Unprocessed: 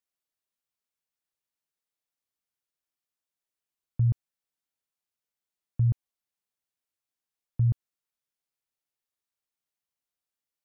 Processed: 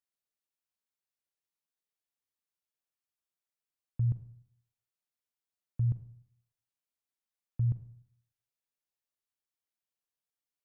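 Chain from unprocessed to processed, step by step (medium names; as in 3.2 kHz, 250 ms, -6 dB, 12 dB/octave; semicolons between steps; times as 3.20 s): Schroeder reverb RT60 0.66 s, combs from 33 ms, DRR 11 dB; trim -5.5 dB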